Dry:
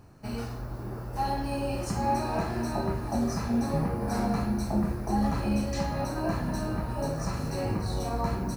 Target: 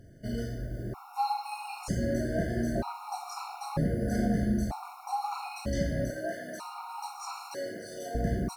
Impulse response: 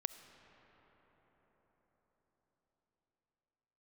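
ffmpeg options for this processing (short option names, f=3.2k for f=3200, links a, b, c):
-filter_complex "[0:a]asettb=1/sr,asplit=3[a][b][c];[a]atrim=end=6.104[d];[b]atrim=start=6.1:end=8.15,asetpts=PTS-STARTPTS,afade=t=in:d=0.004:c=qsin,afade=t=out:st=2.046:d=0.004:c=qsin,highpass=530[e];[c]atrim=start=8.146[f];[d][e]acrossfade=d=0.004:c1=hsin:c2=qsin[g];[g][f]acrossfade=d=0.004:c1=qsin:c2=hsin[h];[1:a]atrim=start_sample=2205,atrim=end_sample=6615,asetrate=37044,aresample=44100[i];[h][i]afir=irnorm=-1:irlink=0,afftfilt=real='re*gt(sin(2*PI*0.53*pts/sr)*(1-2*mod(floor(b*sr/1024/730),2)),0)':imag='im*gt(sin(2*PI*0.53*pts/sr)*(1-2*mod(floor(b*sr/1024/730),2)),0)':win_size=1024:overlap=0.75,volume=2dB"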